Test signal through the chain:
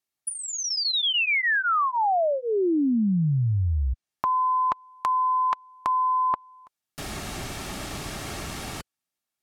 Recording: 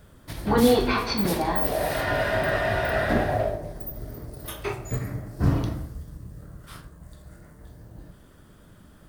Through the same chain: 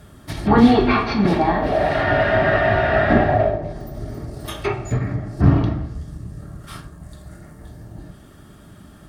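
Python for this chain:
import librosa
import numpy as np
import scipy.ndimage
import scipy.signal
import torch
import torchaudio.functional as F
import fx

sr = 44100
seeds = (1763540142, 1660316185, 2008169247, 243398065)

y = fx.notch_comb(x, sr, f0_hz=500.0)
y = fx.env_lowpass_down(y, sr, base_hz=2900.0, full_db=-26.0)
y = F.gain(torch.from_numpy(y), 8.5).numpy()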